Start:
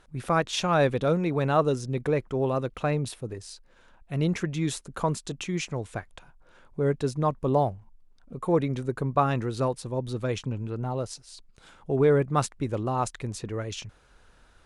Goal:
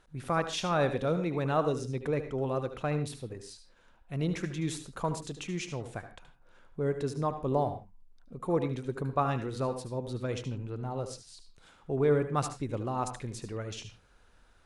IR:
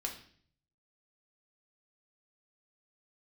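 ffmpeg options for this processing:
-filter_complex "[0:a]asplit=2[a][b];[1:a]atrim=start_sample=2205,atrim=end_sample=4410,adelay=74[c];[b][c]afir=irnorm=-1:irlink=0,volume=-9.5dB[d];[a][d]amix=inputs=2:normalize=0,volume=-5.5dB"

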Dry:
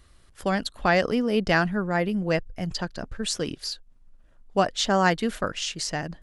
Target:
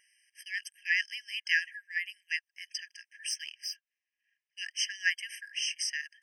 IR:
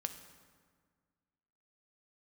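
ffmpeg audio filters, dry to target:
-filter_complex "[0:a]asettb=1/sr,asplit=3[a][b][c];[a]atrim=end=3.304[d];[b]atrim=start=3.3:end=4.58,asetpts=PTS-STARTPTS,afade=t=in:d=0.004:c=qsin,afade=t=out:st=1.276:d=0.004:c=qsin,adynamicsmooth=sensitivity=6.5:basefreq=5.5k[e];[c]atrim=start=4.576[f];[d][e]acrossfade=d=0.004:c1=hsin:c2=qsin[g];[g][f]acrossfade=d=0.004:c1=qsin:c2=hsin,afftfilt=real='re*eq(mod(floor(b*sr/1024/1600),2),1)':imag='im*eq(mod(floor(b*sr/1024/1600),2),1)':win_size=1024:overlap=0.75"

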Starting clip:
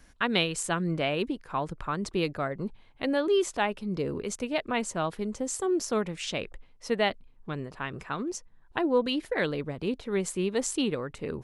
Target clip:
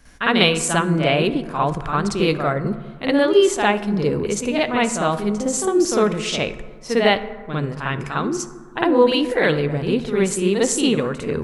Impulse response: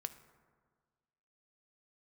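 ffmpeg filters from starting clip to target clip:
-filter_complex "[0:a]asplit=2[a][b];[1:a]atrim=start_sample=2205,adelay=53[c];[b][c]afir=irnorm=-1:irlink=0,volume=9dB[d];[a][d]amix=inputs=2:normalize=0,volume=3dB"

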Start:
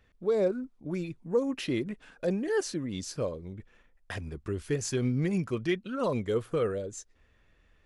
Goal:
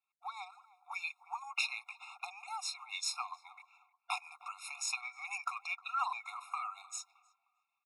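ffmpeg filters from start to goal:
-filter_complex "[0:a]highpass=f=750:p=1,agate=range=-33dB:threshold=-58dB:ratio=3:detection=peak,highshelf=f=5.5k:g=-8.5,acompressor=threshold=-39dB:ratio=6,tremolo=f=7.5:d=0.45,asplit=2[a][b];[b]adelay=309,lowpass=f=1k:p=1,volume=-16dB,asplit=2[c][d];[d]adelay=309,lowpass=f=1k:p=1,volume=0.41,asplit=2[e][f];[f]adelay=309,lowpass=f=1k:p=1,volume=0.41,asplit=2[g][h];[h]adelay=309,lowpass=f=1k:p=1,volume=0.41[i];[c][e][g][i]amix=inputs=4:normalize=0[j];[a][j]amix=inputs=2:normalize=0,afftfilt=real='re*eq(mod(floor(b*sr/1024/710),2),1)':imag='im*eq(mod(floor(b*sr/1024/710),2),1)':win_size=1024:overlap=0.75,volume=15dB"

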